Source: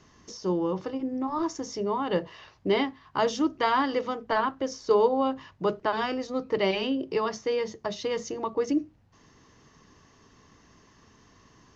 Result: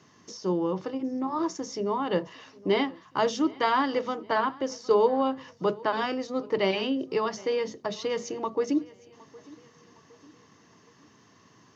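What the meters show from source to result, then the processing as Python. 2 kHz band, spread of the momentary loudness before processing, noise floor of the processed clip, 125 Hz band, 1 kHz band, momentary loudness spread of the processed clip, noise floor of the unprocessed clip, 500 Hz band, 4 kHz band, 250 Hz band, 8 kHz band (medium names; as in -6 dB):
0.0 dB, 8 LU, -59 dBFS, 0.0 dB, 0.0 dB, 8 LU, -59 dBFS, 0.0 dB, 0.0 dB, 0.0 dB, no reading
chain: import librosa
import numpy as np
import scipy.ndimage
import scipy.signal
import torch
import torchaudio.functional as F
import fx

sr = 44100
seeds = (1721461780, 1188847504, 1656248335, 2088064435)

p1 = scipy.signal.sosfilt(scipy.signal.butter(4, 110.0, 'highpass', fs=sr, output='sos'), x)
y = p1 + fx.echo_feedback(p1, sr, ms=763, feedback_pct=45, wet_db=-22.5, dry=0)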